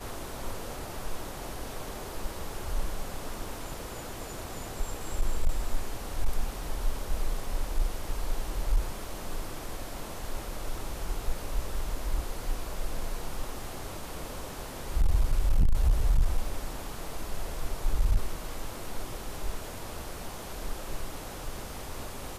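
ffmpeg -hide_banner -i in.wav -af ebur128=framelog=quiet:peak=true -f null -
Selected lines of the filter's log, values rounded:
Integrated loudness:
  I:         -36.5 LUFS
  Threshold: -46.4 LUFS
Loudness range:
  LRA:         7.0 LU
  Threshold: -56.1 LUFS
  LRA low:   -39.1 LUFS
  LRA high:  -32.1 LUFS
True peak:
  Peak:      -17.2 dBFS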